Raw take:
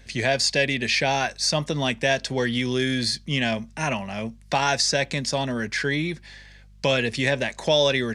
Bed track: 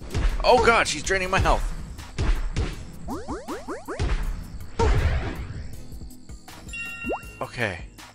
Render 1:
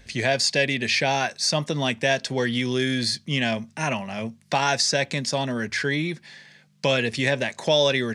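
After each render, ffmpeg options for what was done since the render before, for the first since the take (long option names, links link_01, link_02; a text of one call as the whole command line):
ffmpeg -i in.wav -af "bandreject=frequency=50:width_type=h:width=4,bandreject=frequency=100:width_type=h:width=4" out.wav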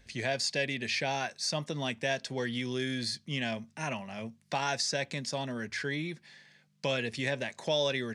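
ffmpeg -i in.wav -af "volume=-9.5dB" out.wav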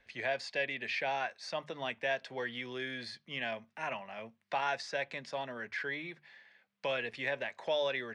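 ffmpeg -i in.wav -filter_complex "[0:a]acrossover=split=450 3200:gain=0.2 1 0.1[link_01][link_02][link_03];[link_01][link_02][link_03]amix=inputs=3:normalize=0,bandreject=frequency=50:width_type=h:width=6,bandreject=frequency=100:width_type=h:width=6,bandreject=frequency=150:width_type=h:width=6" out.wav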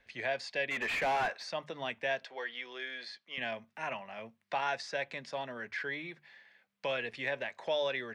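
ffmpeg -i in.wav -filter_complex "[0:a]asplit=3[link_01][link_02][link_03];[link_01]afade=type=out:start_time=0.7:duration=0.02[link_04];[link_02]asplit=2[link_05][link_06];[link_06]highpass=frequency=720:poles=1,volume=23dB,asoftclip=type=tanh:threshold=-22.5dB[link_07];[link_05][link_07]amix=inputs=2:normalize=0,lowpass=frequency=1500:poles=1,volume=-6dB,afade=type=in:start_time=0.7:duration=0.02,afade=type=out:start_time=1.42:duration=0.02[link_08];[link_03]afade=type=in:start_time=1.42:duration=0.02[link_09];[link_04][link_08][link_09]amix=inputs=3:normalize=0,asettb=1/sr,asplit=3[link_10][link_11][link_12];[link_10]atrim=end=2.254[link_13];[link_11]atrim=start=2.25:end=3.38,asetpts=PTS-STARTPTS,afade=type=in:duration=0.004:curve=qsin,afade=type=out:start_time=1.126:duration=0.004:curve=qsin,highpass=520,lowpass=6200[link_14];[link_12]atrim=start=3.376[link_15];[link_13][link_14]acrossfade=duration=0.004:curve1=hsin:curve2=qsin[link_16];[link_16][link_15]acrossfade=duration=0.004:curve1=qsin:curve2=hsin" out.wav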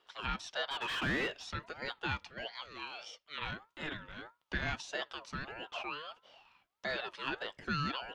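ffmpeg -i in.wav -af "aeval=exprs='val(0)*sin(2*PI*960*n/s+960*0.25/1.6*sin(2*PI*1.6*n/s))':channel_layout=same" out.wav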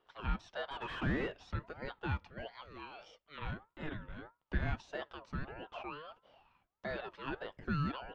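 ffmpeg -i in.wav -af "lowpass=frequency=1000:poles=1,lowshelf=frequency=130:gain=9" out.wav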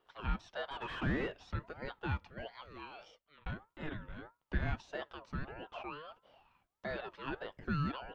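ffmpeg -i in.wav -filter_complex "[0:a]asplit=2[link_01][link_02];[link_01]atrim=end=3.46,asetpts=PTS-STARTPTS,afade=type=out:start_time=3.03:duration=0.43[link_03];[link_02]atrim=start=3.46,asetpts=PTS-STARTPTS,afade=type=in:duration=0.004:curve=hsin[link_04];[link_03][link_04]concat=n=2:v=0:a=1" out.wav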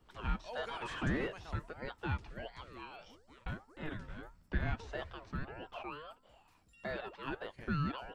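ffmpeg -i in.wav -i bed.wav -filter_complex "[1:a]volume=-30dB[link_01];[0:a][link_01]amix=inputs=2:normalize=0" out.wav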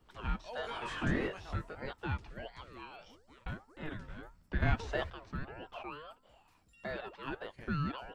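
ffmpeg -i in.wav -filter_complex "[0:a]asettb=1/sr,asplit=3[link_01][link_02][link_03];[link_01]atrim=end=0.624[link_04];[link_02]atrim=start=0.62:end=1.93,asetpts=PTS-STARTPTS,afade=type=in:duration=0.004:curve=qsin,afade=type=out:start_time=1.306:duration=0.004:curve=qsin,asplit=2[link_05][link_06];[link_06]adelay=21,volume=-3.5dB[link_07];[link_05][link_07]amix=inputs=2:normalize=0,atrim=end_sample=57771[link_08];[link_03]atrim=start=1.926[link_09];[link_04][link_08]acrossfade=duration=0.004:curve1=hsin:curve2=qsin[link_10];[link_10][link_09]acrossfade=duration=0.004:curve1=qsin:curve2=hsin,asplit=3[link_11][link_12][link_13];[link_11]atrim=end=4.622[link_14];[link_12]atrim=start=4.618:end=5.102,asetpts=PTS-STARTPTS,volume=6.5dB[link_15];[link_13]atrim=start=5.098[link_16];[link_14][link_15]acrossfade=duration=0.004:curve1=hsin:curve2=hsin[link_17];[link_17][link_16]acrossfade=duration=0.004:curve1=hsin:curve2=hsin" out.wav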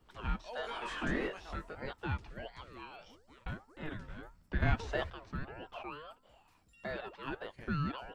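ffmpeg -i in.wav -filter_complex "[0:a]asettb=1/sr,asplit=3[link_01][link_02][link_03];[link_01]atrim=end=0.424[link_04];[link_02]atrim=start=0.42:end=1.68,asetpts=PTS-STARTPTS,afade=type=in:duration=0.004:curve=qsin,afade=type=out:start_time=1.256:duration=0.004:curve=qsin,equalizer=frequency=110:width=1.6:gain=-14[link_05];[link_03]atrim=start=1.676[link_06];[link_04][link_05]acrossfade=duration=0.004:curve1=hsin:curve2=qsin[link_07];[link_07][link_06]acrossfade=duration=0.004:curve1=qsin:curve2=hsin" out.wav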